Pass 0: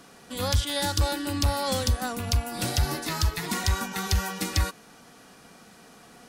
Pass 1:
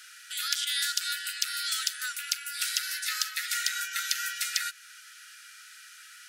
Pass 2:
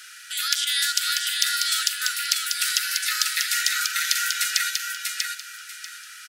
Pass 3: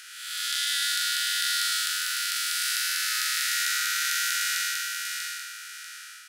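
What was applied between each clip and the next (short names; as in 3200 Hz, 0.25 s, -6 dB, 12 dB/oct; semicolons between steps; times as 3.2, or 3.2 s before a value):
Chebyshev high-pass 1300 Hz, order 10; in parallel at +0.5 dB: compressor, threshold -41 dBFS, peak gain reduction 15.5 dB
feedback echo 0.641 s, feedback 24%, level -4 dB; on a send at -22 dB: reverb RT60 0.95 s, pre-delay 51 ms; on the sum: gain +6 dB
time blur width 0.308 s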